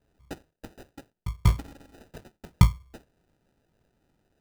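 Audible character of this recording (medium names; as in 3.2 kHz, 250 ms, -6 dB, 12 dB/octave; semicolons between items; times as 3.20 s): phasing stages 12, 1.3 Hz, lowest notch 210–1200 Hz; aliases and images of a low sample rate 1.1 kHz, jitter 0%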